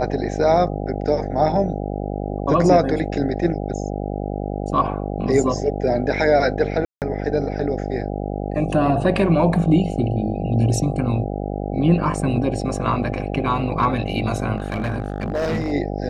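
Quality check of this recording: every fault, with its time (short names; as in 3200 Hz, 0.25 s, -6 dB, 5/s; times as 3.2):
buzz 50 Hz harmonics 16 -26 dBFS
6.85–7.02 gap 0.168 s
14.58–15.73 clipped -18.5 dBFS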